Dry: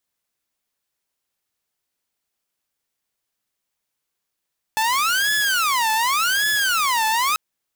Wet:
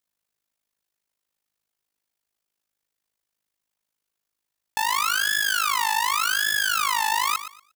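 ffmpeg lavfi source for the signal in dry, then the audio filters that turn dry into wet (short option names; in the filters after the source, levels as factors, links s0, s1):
-f lavfi -i "aevalsrc='0.178*(2*mod((1292*t-418/(2*PI*0.87)*sin(2*PI*0.87*t)),1)-1)':d=2.59:s=44100"
-af "tremolo=f=52:d=0.857,aecho=1:1:118|236|354:0.251|0.0553|0.0122"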